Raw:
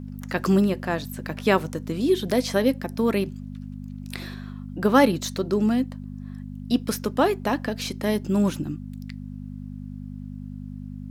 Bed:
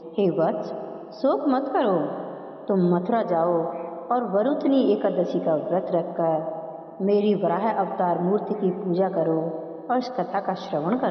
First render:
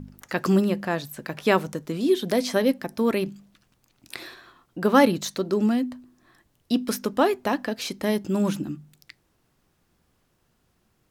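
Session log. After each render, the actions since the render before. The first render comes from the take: de-hum 50 Hz, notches 5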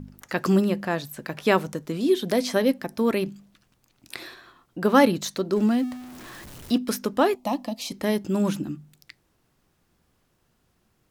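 5.56–6.78 s: jump at every zero crossing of -37 dBFS; 7.35–7.92 s: static phaser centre 420 Hz, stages 6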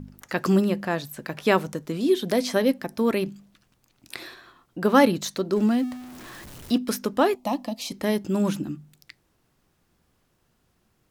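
no audible change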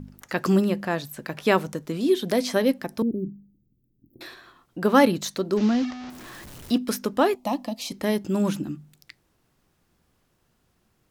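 3.02–4.21 s: inverse Chebyshev band-stop 1.6–6.8 kHz, stop band 80 dB; 5.57–6.10 s: one-bit delta coder 32 kbps, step -30.5 dBFS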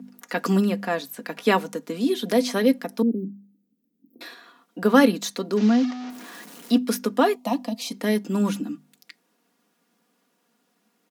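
steep high-pass 190 Hz 36 dB/octave; comb 4.2 ms, depth 57%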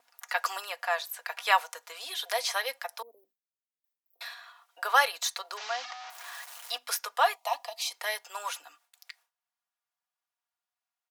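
steep high-pass 700 Hz 36 dB/octave; gate with hold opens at -59 dBFS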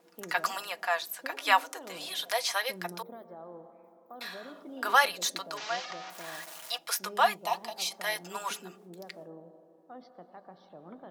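add bed -24.5 dB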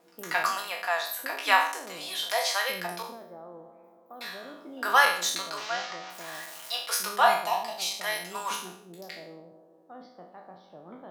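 spectral sustain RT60 0.56 s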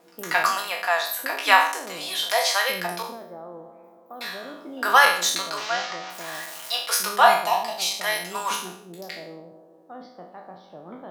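trim +5.5 dB; peak limiter -2 dBFS, peak gain reduction 2 dB

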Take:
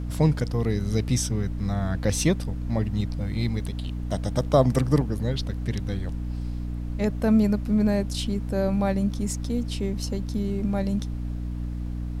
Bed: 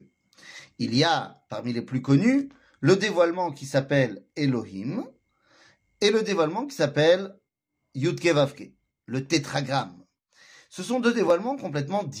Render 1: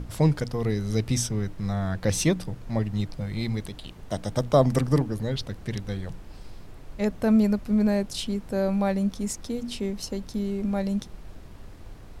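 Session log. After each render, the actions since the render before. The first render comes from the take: hum notches 60/120/180/240/300 Hz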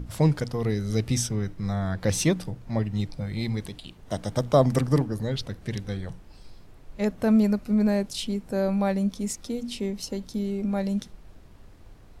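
noise print and reduce 6 dB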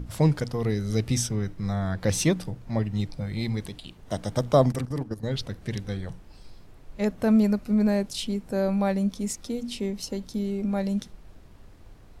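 4.72–5.31 s: level held to a coarse grid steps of 14 dB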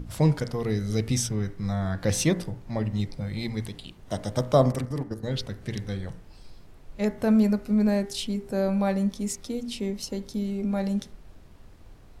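de-hum 57.05 Hz, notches 39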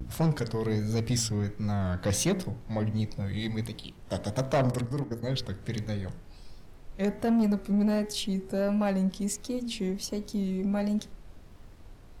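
saturation -20 dBFS, distortion -12 dB; vibrato 1.4 Hz 93 cents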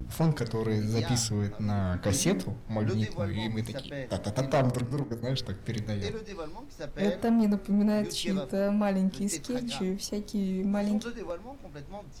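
add bed -16 dB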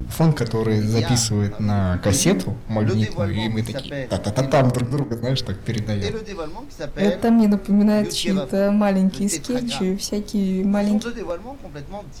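trim +9 dB

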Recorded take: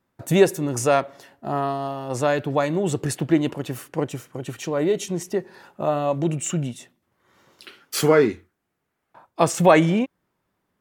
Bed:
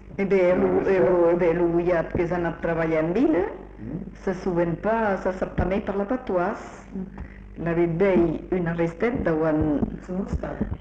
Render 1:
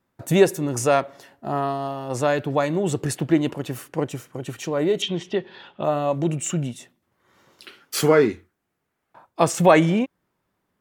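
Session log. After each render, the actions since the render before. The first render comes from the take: 5.02–5.84 s: resonant low-pass 3.3 kHz, resonance Q 7.3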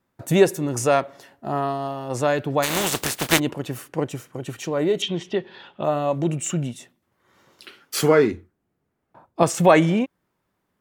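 2.62–3.38 s: spectral contrast reduction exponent 0.33; 8.31–9.43 s: tilt shelf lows +6.5 dB, about 720 Hz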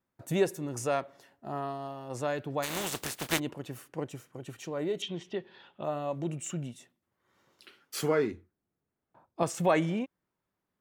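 trim -11 dB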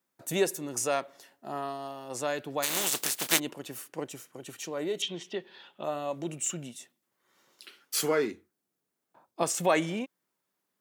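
high-pass 200 Hz 12 dB/octave; treble shelf 3.1 kHz +10 dB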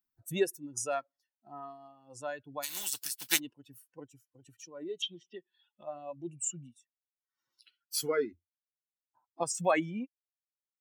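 expander on every frequency bin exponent 2; upward compressor, threshold -52 dBFS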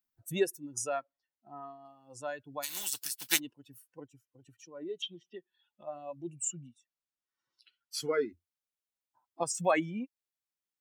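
0.89–1.85 s: distance through air 180 m; 4.00–5.93 s: treble shelf 4.3 kHz -8.5 dB; 6.55–8.14 s: distance through air 53 m

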